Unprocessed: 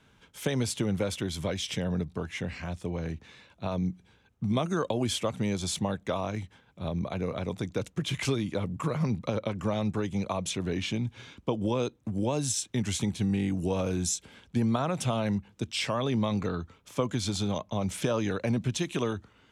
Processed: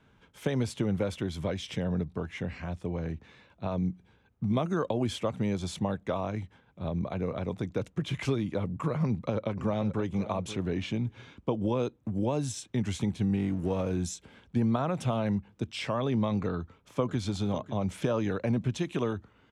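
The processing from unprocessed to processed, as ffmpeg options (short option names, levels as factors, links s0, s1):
-filter_complex "[0:a]asplit=2[s0][s1];[s1]afade=t=in:st=9.04:d=0.01,afade=t=out:st=10.08:d=0.01,aecho=0:1:530|1060:0.223872|0.0223872[s2];[s0][s2]amix=inputs=2:normalize=0,asettb=1/sr,asplit=3[s3][s4][s5];[s3]atrim=end=13.364[s6];[s4]atrim=start=13.36:end=13.91,asetpts=PTS-STARTPTS,afade=t=in:d=0.004:c=qsin,afade=t=out:st=0.546:d=0.004:c=qsin,aeval=exprs='sgn(val(0))*max(abs(val(0))-0.00422,0)':c=same[s7];[s5]atrim=start=13.906[s8];[s6][s7]acrossfade=d=0.004:c1=hsin:c2=qsin[s9];[s9][s8]acrossfade=d=0.004:c1=qsin:c2=hsin,asplit=2[s10][s11];[s11]afade=t=in:st=16.53:d=0.01,afade=t=out:st=17.18:d=0.01,aecho=0:1:550|1100|1650:0.199526|0.0498816|0.0124704[s12];[s10][s12]amix=inputs=2:normalize=0,highshelf=f=3200:g=-11.5"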